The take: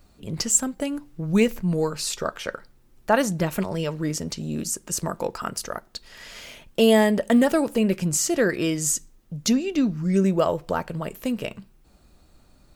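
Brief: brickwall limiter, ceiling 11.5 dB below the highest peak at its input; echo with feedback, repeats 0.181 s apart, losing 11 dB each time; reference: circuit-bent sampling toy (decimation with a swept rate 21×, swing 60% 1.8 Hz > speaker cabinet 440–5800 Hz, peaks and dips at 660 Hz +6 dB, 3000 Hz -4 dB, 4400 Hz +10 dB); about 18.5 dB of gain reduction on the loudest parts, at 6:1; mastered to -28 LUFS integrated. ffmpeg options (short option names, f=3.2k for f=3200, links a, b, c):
-af "acompressor=threshold=-34dB:ratio=6,alimiter=level_in=5.5dB:limit=-24dB:level=0:latency=1,volume=-5.5dB,aecho=1:1:181|362|543:0.282|0.0789|0.0221,acrusher=samples=21:mix=1:aa=0.000001:lfo=1:lforange=12.6:lforate=1.8,highpass=440,equalizer=f=660:t=q:w=4:g=6,equalizer=f=3k:t=q:w=4:g=-4,equalizer=f=4.4k:t=q:w=4:g=10,lowpass=f=5.8k:w=0.5412,lowpass=f=5.8k:w=1.3066,volume=14.5dB"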